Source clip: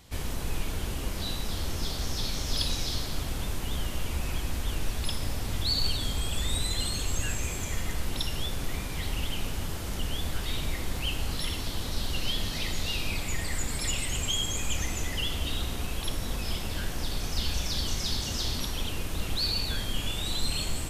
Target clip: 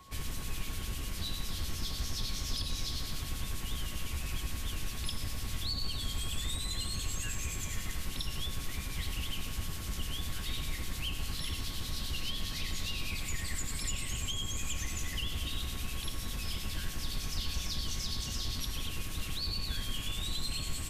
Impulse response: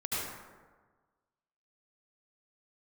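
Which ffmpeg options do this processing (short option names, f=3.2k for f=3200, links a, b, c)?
-filter_complex "[0:a]acrossover=split=120|300|1500[a][b][c][d];[a]acompressor=threshold=-30dB:ratio=4[e];[b]acompressor=threshold=-45dB:ratio=4[f];[c]acompressor=threshold=-55dB:ratio=4[g];[d]acompressor=threshold=-34dB:ratio=4[h];[e][f][g][h]amix=inputs=4:normalize=0,aeval=exprs='val(0)+0.00224*sin(2*PI*1100*n/s)':c=same,acrossover=split=2300[i][j];[i]aeval=exprs='val(0)*(1-0.5/2+0.5/2*cos(2*PI*9.9*n/s))':c=same[k];[j]aeval=exprs='val(0)*(1-0.5/2-0.5/2*cos(2*PI*9.9*n/s))':c=same[l];[k][l]amix=inputs=2:normalize=0"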